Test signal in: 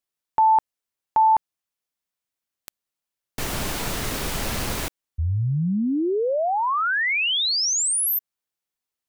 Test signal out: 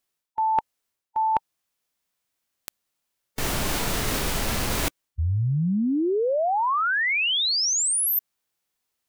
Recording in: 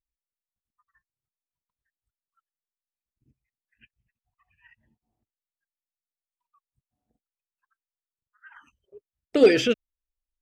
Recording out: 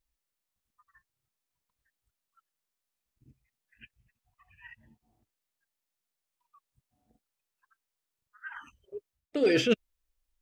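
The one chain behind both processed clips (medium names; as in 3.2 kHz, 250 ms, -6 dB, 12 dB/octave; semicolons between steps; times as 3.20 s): harmonic-percussive split harmonic +5 dB; reverse; compression 12:1, threshold -26 dBFS; reverse; trim +4.5 dB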